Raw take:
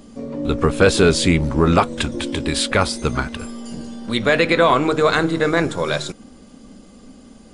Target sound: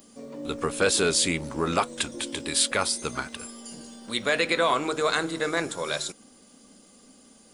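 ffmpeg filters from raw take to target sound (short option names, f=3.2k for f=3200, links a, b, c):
-af "aemphasis=mode=production:type=bsi,volume=-8dB"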